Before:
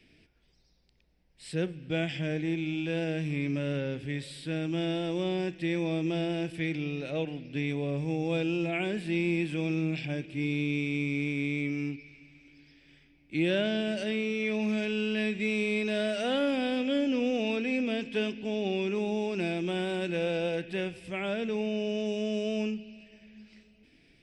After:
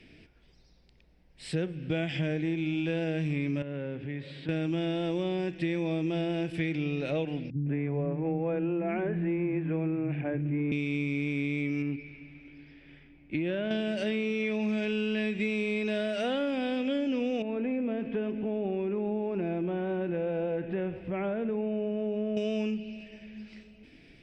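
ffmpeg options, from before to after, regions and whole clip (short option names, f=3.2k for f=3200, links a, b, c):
-filter_complex "[0:a]asettb=1/sr,asplit=3[a][b][c];[a]atrim=end=3.624[d];[b]atrim=start=3.62:end=4.49,asetpts=PTS-STARTPTS,afade=t=in:d=0.004:c=qsin,afade=t=out:st=0.866:d=0.004:c=qsin,highpass=100,lowpass=2.5k,acompressor=threshold=-46dB:ratio=2:attack=3.2:release=140:knee=1:detection=peak[e];[c]atrim=start=4.486[f];[d][e]acrossfade=d=0.004:c1=hsin:c2=qsin[g];[g][f]acrossfade=d=0.004:c1=qsin:c2=hsin,asettb=1/sr,asplit=3[h][i][j];[h]atrim=end=7.504[k];[i]atrim=start=7.5:end=10.72,asetpts=PTS-STARTPTS,afade=t=in:d=0.004:c=qsin,afade=t=out:st=3.216:d=0.004:c=qsin,lowpass=f=1.8k:w=0.5412,lowpass=f=1.8k:w=1.3066,acrossover=split=230[l][m];[m]adelay=160[n];[l][n]amix=inputs=2:normalize=0,atrim=end_sample=142002[o];[j]atrim=start=10.716[p];[k][o]acrossfade=d=0.004:c1=hsin:c2=qsin[q];[q][p]acrossfade=d=0.004:c1=qsin:c2=hsin,asettb=1/sr,asplit=3[r][s][t];[r]atrim=end=11.824[u];[s]atrim=start=11.82:end=13.71,asetpts=PTS-STARTPTS,afade=t=in:d=0.004:c=qsin,afade=t=out:st=1.886:d=0.004:c=qsin,acompressor=threshold=-30dB:ratio=6:attack=3.2:release=140:knee=1:detection=peak,bass=f=250:g=0,treble=f=4k:g=-15[v];[t]atrim=start=13.706[w];[u][v]acrossfade=d=0.004:c1=hsin:c2=qsin[x];[x][w]acrossfade=d=0.004:c1=qsin:c2=hsin,asettb=1/sr,asplit=3[y][z][aa];[y]atrim=end=17.424[ab];[z]atrim=start=17.42:end=22.37,asetpts=PTS-STARTPTS,afade=t=in:d=0.004:c=qsin,afade=t=out:st=4.946:d=0.004:c=qsin,lowpass=1.4k,acompressor=threshold=-36dB:ratio=2:attack=3.2:release=140:knee=1:detection=peak,aecho=1:1:134:0.15,atrim=end_sample=218295[ac];[aa]atrim=start=22.366[ad];[ab][ac]acrossfade=d=0.004:c1=hsin:c2=qsin[ae];[ae][ad]acrossfade=d=0.004:c1=qsin:c2=hsin,aemphasis=mode=reproduction:type=cd,acompressor=threshold=-34dB:ratio=6,volume=7dB"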